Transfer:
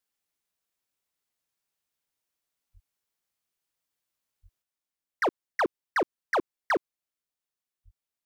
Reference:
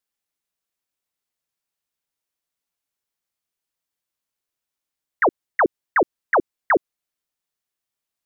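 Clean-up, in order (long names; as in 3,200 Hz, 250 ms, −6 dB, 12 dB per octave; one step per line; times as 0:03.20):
clipped peaks rebuilt −21.5 dBFS
high-pass at the plosives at 0:02.73/0:04.42/0:07.84
level correction +6.5 dB, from 0:04.62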